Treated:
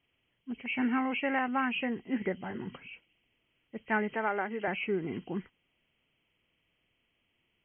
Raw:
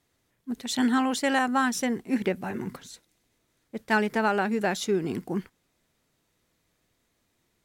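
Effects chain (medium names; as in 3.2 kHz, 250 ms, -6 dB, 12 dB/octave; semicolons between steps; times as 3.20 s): knee-point frequency compression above 1.9 kHz 4:1; 4.14–4.68 s: high-pass 300 Hz 12 dB/octave; trim -6 dB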